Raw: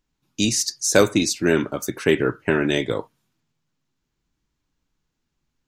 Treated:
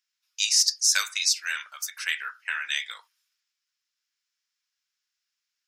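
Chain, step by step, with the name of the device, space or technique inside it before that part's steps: headphones lying on a table (HPF 1500 Hz 24 dB/oct; bell 5200 Hz +8.5 dB 0.27 oct); gain -1 dB

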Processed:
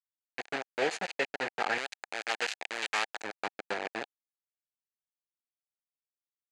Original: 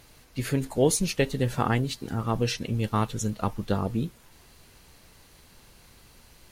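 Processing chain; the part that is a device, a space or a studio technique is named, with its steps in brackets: hand-held game console (bit-crush 4-bit; speaker cabinet 490–5900 Hz, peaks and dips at 780 Hz +5 dB, 1100 Hz -7 dB, 1700 Hz +7 dB, 2400 Hz +4 dB, 3400 Hz -4 dB, 5500 Hz -10 dB); 1.78–3.2 tilt +3.5 dB/oct; gain -5.5 dB

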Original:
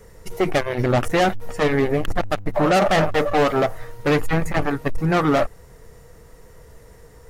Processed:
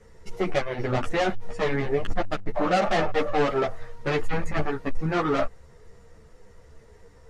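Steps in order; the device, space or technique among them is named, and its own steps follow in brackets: string-machine ensemble chorus (ensemble effect; LPF 6700 Hz 12 dB/oct); gain -2.5 dB

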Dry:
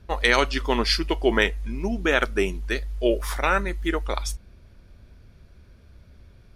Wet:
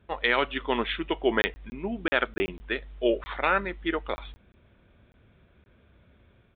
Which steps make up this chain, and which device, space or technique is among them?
call with lost packets (HPF 180 Hz 6 dB/oct; downsampling 8000 Hz; AGC gain up to 3 dB; packet loss packets of 20 ms random); gain -4.5 dB

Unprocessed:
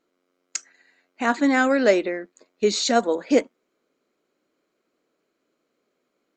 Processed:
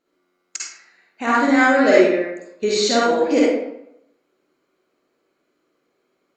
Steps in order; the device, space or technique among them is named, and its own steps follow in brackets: bathroom (reverb RT60 0.80 s, pre-delay 45 ms, DRR -6.5 dB); gain -2 dB

